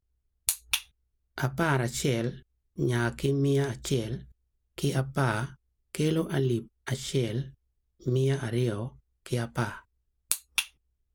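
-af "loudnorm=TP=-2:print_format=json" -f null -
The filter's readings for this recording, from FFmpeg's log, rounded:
"input_i" : "-29.9",
"input_tp" : "-7.8",
"input_lra" : "2.3",
"input_thresh" : "-40.7",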